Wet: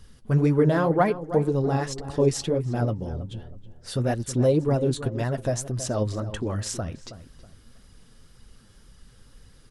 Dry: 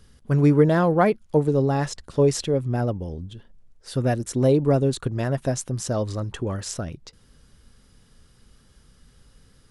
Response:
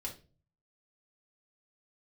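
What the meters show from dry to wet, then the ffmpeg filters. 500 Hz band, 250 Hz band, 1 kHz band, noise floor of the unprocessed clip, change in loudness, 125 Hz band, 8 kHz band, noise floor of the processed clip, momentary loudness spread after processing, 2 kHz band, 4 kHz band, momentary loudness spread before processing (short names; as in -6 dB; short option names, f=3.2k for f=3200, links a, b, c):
-2.5 dB, -2.5 dB, -1.5 dB, -57 dBFS, -2.5 dB, -2.0 dB, -1.0 dB, -54 dBFS, 13 LU, -2.0 dB, -1.0 dB, 13 LU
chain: -filter_complex "[0:a]asplit=2[a][b];[b]acompressor=threshold=-31dB:ratio=6,volume=-1dB[c];[a][c]amix=inputs=2:normalize=0,flanger=delay=1:depth=8.6:regen=38:speed=1.9:shape=sinusoidal,asplit=2[d][e];[e]adelay=322,lowpass=f=1.9k:p=1,volume=-13dB,asplit=2[f][g];[g]adelay=322,lowpass=f=1.9k:p=1,volume=0.3,asplit=2[h][i];[i]adelay=322,lowpass=f=1.9k:p=1,volume=0.3[j];[d][f][h][j]amix=inputs=4:normalize=0"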